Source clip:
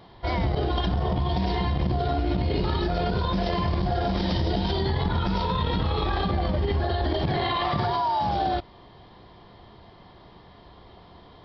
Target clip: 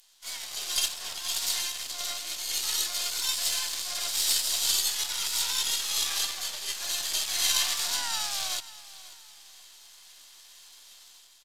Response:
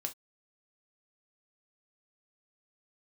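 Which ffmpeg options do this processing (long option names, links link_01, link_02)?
-filter_complex "[0:a]highpass=340,aderivative,aeval=exprs='max(val(0),0)':channel_layout=same,asplit=3[link_01][link_02][link_03];[link_02]asetrate=37084,aresample=44100,atempo=1.18921,volume=-8dB[link_04];[link_03]asetrate=66075,aresample=44100,atempo=0.66742,volume=-5dB[link_05];[link_01][link_04][link_05]amix=inputs=3:normalize=0,dynaudnorm=framelen=130:gausssize=7:maxgain=10dB,crystalizer=i=10:c=0,asplit=2[link_06][link_07];[link_07]aecho=0:1:538|1076|1614:0.126|0.0428|0.0146[link_08];[link_06][link_08]amix=inputs=2:normalize=0,aresample=32000,aresample=44100,volume=-8dB"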